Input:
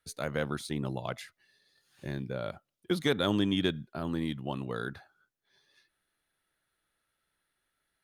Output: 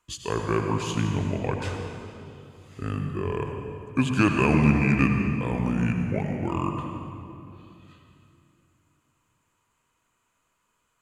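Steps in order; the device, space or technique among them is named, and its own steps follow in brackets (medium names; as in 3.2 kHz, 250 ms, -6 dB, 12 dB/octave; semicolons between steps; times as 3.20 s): slowed and reverbed (tape speed -27%; reverberation RT60 2.7 s, pre-delay 72 ms, DRR 3 dB); trim +6 dB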